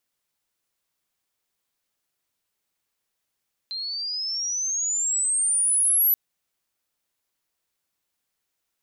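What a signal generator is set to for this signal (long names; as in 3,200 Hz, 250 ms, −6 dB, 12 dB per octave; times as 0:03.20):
glide logarithmic 4,100 Hz → 12,000 Hz −28.5 dBFS → −16 dBFS 2.43 s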